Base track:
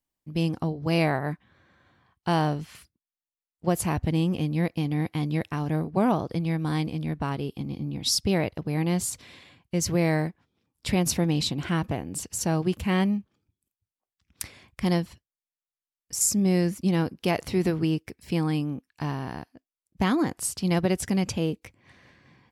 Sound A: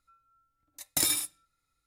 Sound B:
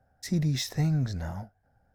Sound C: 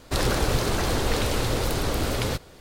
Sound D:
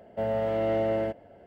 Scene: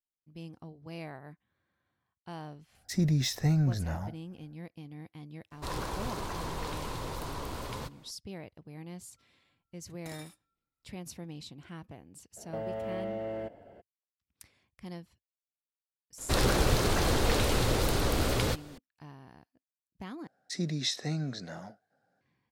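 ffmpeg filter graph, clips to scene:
-filter_complex "[2:a]asplit=2[s0][s1];[3:a]asplit=2[s2][s3];[0:a]volume=0.112[s4];[s2]equalizer=f=1000:t=o:w=0.35:g=12[s5];[1:a]lowpass=f=1700:p=1[s6];[4:a]acompressor=threshold=0.0251:ratio=6:attack=3.2:release=140:knee=1:detection=peak[s7];[s1]highpass=f=180:w=0.5412,highpass=f=180:w=1.3066,equalizer=f=220:t=q:w=4:g=-5,equalizer=f=910:t=q:w=4:g=-7,equalizer=f=4000:t=q:w=4:g=7,lowpass=f=9400:w=0.5412,lowpass=f=9400:w=1.3066[s8];[s4]asplit=2[s9][s10];[s9]atrim=end=20.274[s11];[s8]atrim=end=1.94,asetpts=PTS-STARTPTS,volume=0.891[s12];[s10]atrim=start=22.206[s13];[s0]atrim=end=1.94,asetpts=PTS-STARTPTS,afade=t=in:d=0.1,afade=t=out:st=1.84:d=0.1,adelay=2660[s14];[s5]atrim=end=2.6,asetpts=PTS-STARTPTS,volume=0.2,afade=t=in:d=0.004:c=hsin,afade=t=out:st=2.596:d=0.004:c=hsin,adelay=5510[s15];[s6]atrim=end=1.86,asetpts=PTS-STARTPTS,volume=0.237,afade=t=in:d=0.004:c=hsin,afade=t=out:st=1.856:d=0.004:c=hsin,adelay=9090[s16];[s7]atrim=end=1.46,asetpts=PTS-STARTPTS,volume=0.841,afade=t=in:d=0.02,afade=t=out:st=1.44:d=0.02,adelay=545076S[s17];[s3]atrim=end=2.6,asetpts=PTS-STARTPTS,volume=0.75,afade=t=in:d=0.004:c=hsin,afade=t=out:st=2.596:d=0.004:c=hsin,adelay=16180[s18];[s11][s12]acrossfade=d=0.004:c1=hsin:c2=hsin[s19];[s19][s13]acrossfade=d=0.004:c1=hsin:c2=hsin[s20];[s20][s14][s15][s16][s17][s18]amix=inputs=6:normalize=0"

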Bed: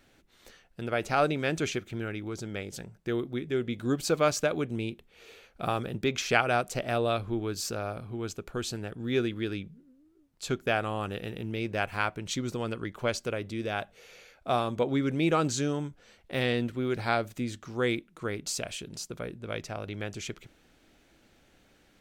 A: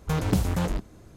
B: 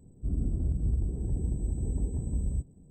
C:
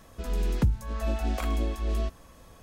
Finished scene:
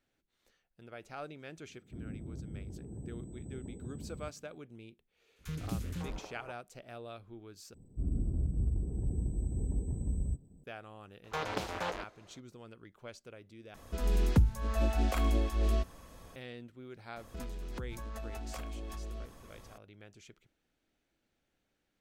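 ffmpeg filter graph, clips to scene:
-filter_complex "[2:a]asplit=2[s0][s1];[1:a]asplit=2[s2][s3];[3:a]asplit=2[s4][s5];[0:a]volume=0.119[s6];[s0]highpass=120[s7];[s2]acrossover=split=430|1400[s8][s9][s10];[s8]adelay=30[s11];[s9]adelay=550[s12];[s11][s12][s10]amix=inputs=3:normalize=0[s13];[s3]acrossover=split=430 5300:gain=0.0794 1 0.158[s14][s15][s16];[s14][s15][s16]amix=inputs=3:normalize=0[s17];[s5]acompressor=threshold=0.0158:ratio=12:attack=2.5:release=34:knee=1:detection=peak[s18];[s6]asplit=3[s19][s20][s21];[s19]atrim=end=7.744[s22];[s1]atrim=end=2.9,asetpts=PTS-STARTPTS,volume=0.668[s23];[s20]atrim=start=10.636:end=13.744[s24];[s4]atrim=end=2.62,asetpts=PTS-STARTPTS,volume=0.891[s25];[s21]atrim=start=16.356[s26];[s7]atrim=end=2.9,asetpts=PTS-STARTPTS,volume=0.447,afade=t=in:d=0.004:c=hsin,afade=t=out:st=2.896:d=0.004:c=hsin,adelay=1680[s27];[s13]atrim=end=1.16,asetpts=PTS-STARTPTS,volume=0.237,afade=t=in:d=0.004:c=hsin,afade=t=out:st=1.156:d=0.004:c=hsin,adelay=5360[s28];[s17]atrim=end=1.16,asetpts=PTS-STARTPTS,volume=0.841,afade=t=in:d=0.004:c=hsin,afade=t=out:st=1.156:d=0.004:c=hsin,adelay=11240[s29];[s18]atrim=end=2.62,asetpts=PTS-STARTPTS,volume=0.75,afade=t=in:d=0.004:c=hsin,afade=t=out:st=2.616:d=0.004:c=hsin,adelay=756756S[s30];[s22][s23]acrossfade=d=0.004:c1=hsin:c2=hsin[s31];[s31][s24]acrossfade=d=0.004:c1=hsin:c2=hsin[s32];[s32][s25]acrossfade=d=0.004:c1=hsin:c2=hsin[s33];[s33][s26]acrossfade=d=0.004:c1=hsin:c2=hsin[s34];[s34][s27][s28][s29][s30]amix=inputs=5:normalize=0"

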